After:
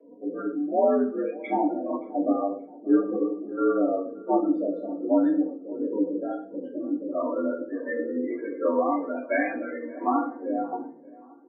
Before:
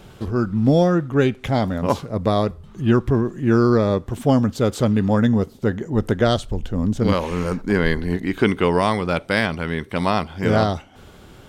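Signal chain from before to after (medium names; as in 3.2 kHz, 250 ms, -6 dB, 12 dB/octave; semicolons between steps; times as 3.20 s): hum notches 50/100/150/200/250/300/350/400 Hz; harmonic-percussive split percussive -3 dB; comb 4.6 ms, depth 39%; compression 6:1, threshold -20 dBFS, peak gain reduction 8.5 dB; tremolo saw down 1.4 Hz, depth 85%; flange 0.44 Hz, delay 5.3 ms, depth 4.7 ms, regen -74%; hysteresis with a dead band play -48 dBFS; loudest bins only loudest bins 16; on a send: filtered feedback delay 576 ms, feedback 49%, low-pass 1.3 kHz, level -21 dB; on the sum: simulated room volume 34 m³, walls mixed, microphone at 2.2 m; mistuned SSB +75 Hz 200–2800 Hz; trim -4 dB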